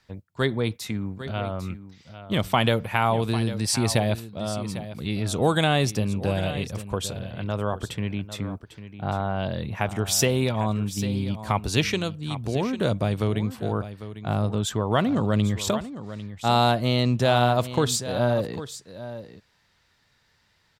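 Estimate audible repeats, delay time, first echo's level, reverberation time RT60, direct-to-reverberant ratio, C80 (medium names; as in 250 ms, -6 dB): 1, 799 ms, -13.0 dB, no reverb, no reverb, no reverb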